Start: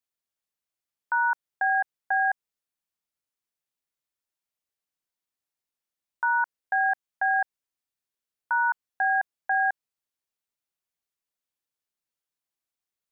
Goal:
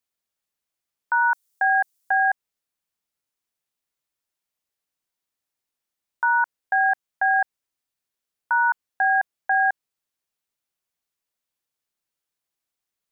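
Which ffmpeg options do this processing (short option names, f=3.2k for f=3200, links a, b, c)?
-filter_complex "[0:a]asettb=1/sr,asplit=3[a][b][c];[a]atrim=end=1.224[d];[b]atrim=start=1.22:end=2.12,asetpts=PTS-STARTPTS,afade=t=in:d=0.004:c=qsin,afade=t=out:st=0.896:d=0.004:c=qsin,bass=f=250:g=0,treble=f=4k:g=15[e];[c]atrim=start=2.116[f];[d][e]acrossfade=d=0.004:c1=hsin:c2=qsin[g];[g][f]acrossfade=d=0.004:c1=qsin:c2=hsin,volume=4dB"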